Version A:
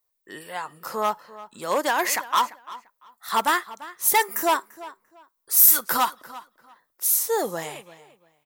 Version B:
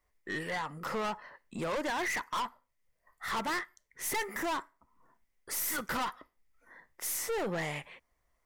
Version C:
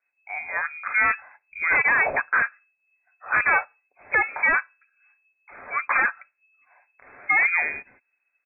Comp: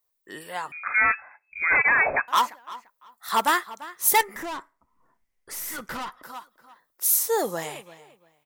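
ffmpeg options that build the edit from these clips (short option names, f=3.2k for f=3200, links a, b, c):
-filter_complex "[0:a]asplit=3[a][b][c];[a]atrim=end=0.722[d];[2:a]atrim=start=0.718:end=2.282[e];[b]atrim=start=2.278:end=4.212[f];[1:a]atrim=start=4.208:end=6.232[g];[c]atrim=start=6.228[h];[d][e]acrossfade=d=0.004:c1=hsin:c2=hsin[i];[i][f]acrossfade=d=0.004:c1=hsin:c2=hsin[j];[j][g]acrossfade=d=0.004:c1=hsin:c2=hsin[k];[k][h]acrossfade=d=0.004:c1=hsin:c2=hsin"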